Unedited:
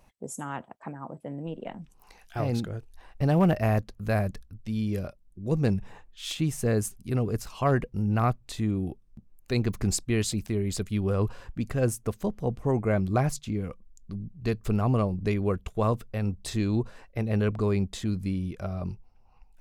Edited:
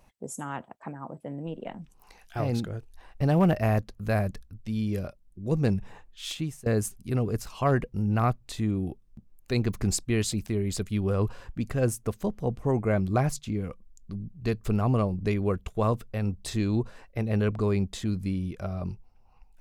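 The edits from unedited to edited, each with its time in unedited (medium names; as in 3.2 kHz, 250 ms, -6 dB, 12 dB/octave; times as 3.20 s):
6.25–6.66 s: fade out, to -19.5 dB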